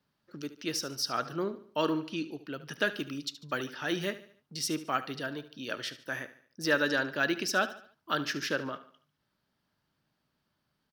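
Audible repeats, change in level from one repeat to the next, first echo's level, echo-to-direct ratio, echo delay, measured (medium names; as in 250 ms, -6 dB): 3, -7.5 dB, -15.0 dB, -14.0 dB, 73 ms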